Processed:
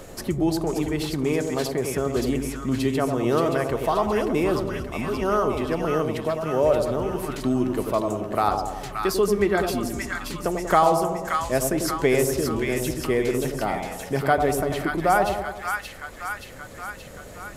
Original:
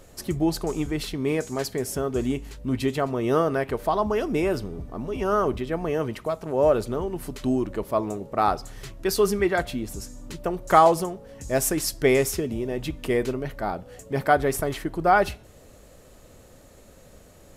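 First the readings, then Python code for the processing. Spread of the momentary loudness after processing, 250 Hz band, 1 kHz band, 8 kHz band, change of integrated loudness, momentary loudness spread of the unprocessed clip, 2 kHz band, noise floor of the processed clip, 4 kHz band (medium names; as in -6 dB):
9 LU, +2.0 dB, +0.5 dB, 0.0 dB, +1.0 dB, 11 LU, +2.0 dB, -41 dBFS, +1.5 dB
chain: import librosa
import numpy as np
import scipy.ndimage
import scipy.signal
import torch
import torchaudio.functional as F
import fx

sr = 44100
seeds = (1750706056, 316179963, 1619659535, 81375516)

y = fx.echo_split(x, sr, split_hz=1100.0, low_ms=94, high_ms=576, feedback_pct=52, wet_db=-5)
y = fx.band_squash(y, sr, depth_pct=40)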